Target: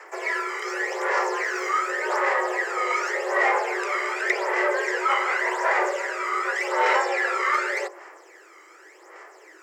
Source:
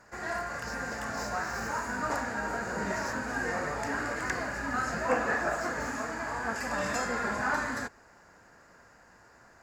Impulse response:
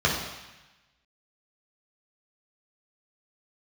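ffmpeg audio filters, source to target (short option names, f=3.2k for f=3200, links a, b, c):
-filter_complex "[0:a]acrossover=split=5700[a][b];[b]acompressor=threshold=-59dB:ratio=4:attack=1:release=60[c];[a][c]amix=inputs=2:normalize=0,aphaser=in_gain=1:out_gain=1:delay=1.1:decay=0.64:speed=0.87:type=sinusoidal,asplit=2[d][e];[e]asoftclip=type=tanh:threshold=-28dB,volume=-10dB[f];[d][f]amix=inputs=2:normalize=0,afreqshift=310,bandreject=f=51.22:t=h:w=4,bandreject=f=102.44:t=h:w=4,bandreject=f=153.66:t=h:w=4,bandreject=f=204.88:t=h:w=4,bandreject=f=256.1:t=h:w=4,bandreject=f=307.32:t=h:w=4,bandreject=f=358.54:t=h:w=4,bandreject=f=409.76:t=h:w=4,bandreject=f=460.98:t=h:w=4,bandreject=f=512.2:t=h:w=4,bandreject=f=563.42:t=h:w=4,bandreject=f=614.64:t=h:w=4,bandreject=f=665.86:t=h:w=4,bandreject=f=717.08:t=h:w=4,bandreject=f=768.3:t=h:w=4,bandreject=f=819.52:t=h:w=4,bandreject=f=870.74:t=h:w=4,bandreject=f=921.96:t=h:w=4,bandreject=f=973.18:t=h:w=4,bandreject=f=1.0244k:t=h:w=4,bandreject=f=1.07562k:t=h:w=4,volume=3.5dB"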